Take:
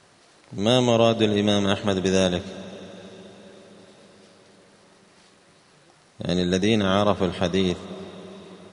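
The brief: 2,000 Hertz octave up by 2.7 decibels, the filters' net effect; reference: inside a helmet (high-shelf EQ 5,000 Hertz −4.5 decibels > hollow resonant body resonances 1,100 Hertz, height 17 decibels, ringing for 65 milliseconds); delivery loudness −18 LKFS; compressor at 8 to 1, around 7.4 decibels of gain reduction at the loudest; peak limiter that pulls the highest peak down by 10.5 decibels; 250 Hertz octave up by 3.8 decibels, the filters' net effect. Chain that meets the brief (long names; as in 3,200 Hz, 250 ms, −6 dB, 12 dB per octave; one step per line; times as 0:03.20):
parametric band 250 Hz +5 dB
parametric band 2,000 Hz +4.5 dB
downward compressor 8 to 1, threshold −19 dBFS
brickwall limiter −19 dBFS
high-shelf EQ 5,000 Hz −4.5 dB
hollow resonant body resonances 1,100 Hz, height 17 dB, ringing for 65 ms
level +13.5 dB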